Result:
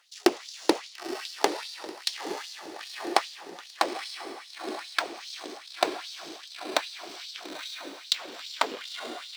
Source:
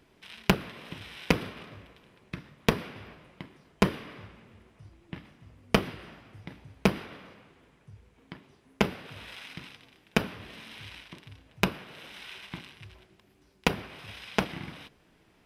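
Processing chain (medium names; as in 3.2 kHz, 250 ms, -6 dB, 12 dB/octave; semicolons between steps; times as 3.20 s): gliding tape speed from 190% -> 140%; echo that smears into a reverb 936 ms, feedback 46%, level -7 dB; LFO high-pass sine 2.5 Hz 330–4400 Hz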